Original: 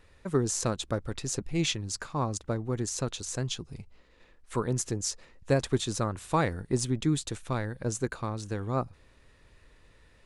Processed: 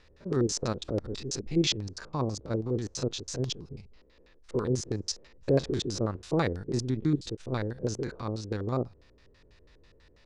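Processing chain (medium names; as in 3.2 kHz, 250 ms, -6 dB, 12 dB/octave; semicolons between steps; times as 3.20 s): spectrogram pixelated in time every 50 ms; LFO low-pass square 6.1 Hz 430–5100 Hz; 6.71–7.39 s: trance gate "xxxxx..xxx" 194 bpm -12 dB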